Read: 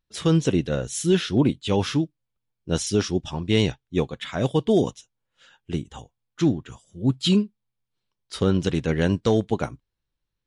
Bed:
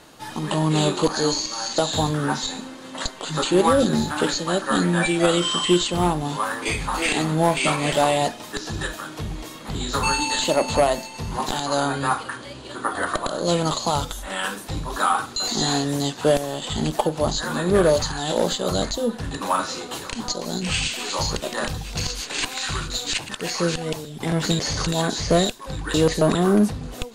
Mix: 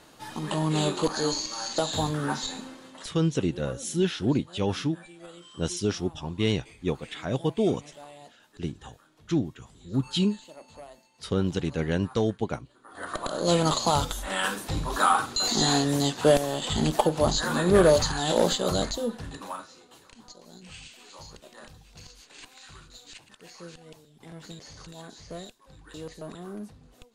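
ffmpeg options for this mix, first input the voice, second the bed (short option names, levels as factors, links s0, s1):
-filter_complex "[0:a]adelay=2900,volume=0.562[s0];[1:a]volume=11.2,afade=t=out:st=2.7:d=0.41:silence=0.0794328,afade=t=in:st=12.87:d=0.7:silence=0.0473151,afade=t=out:st=18.46:d=1.22:silence=0.0944061[s1];[s0][s1]amix=inputs=2:normalize=0"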